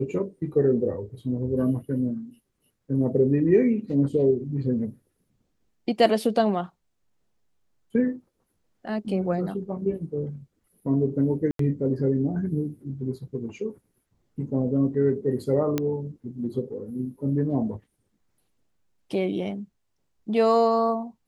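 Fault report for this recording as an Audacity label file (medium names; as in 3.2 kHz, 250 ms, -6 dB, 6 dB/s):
11.510000	11.590000	dropout 83 ms
15.780000	15.780000	pop -11 dBFS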